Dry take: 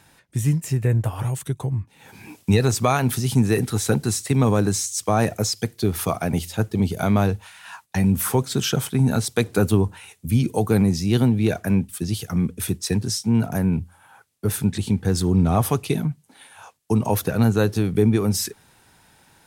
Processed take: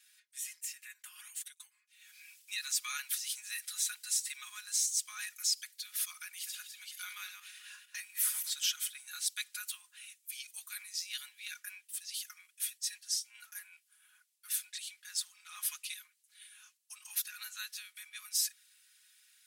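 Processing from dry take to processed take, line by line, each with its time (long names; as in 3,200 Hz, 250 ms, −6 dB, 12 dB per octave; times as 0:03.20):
0:06.26–0:08.50: feedback delay that plays each chunk backwards 114 ms, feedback 41%, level −7 dB
0:12.59–0:13.65: notch comb filter 250 Hz
whole clip: Bessel high-pass filter 2,700 Hz, order 8; comb filter 4.8 ms, depth 92%; level −7.5 dB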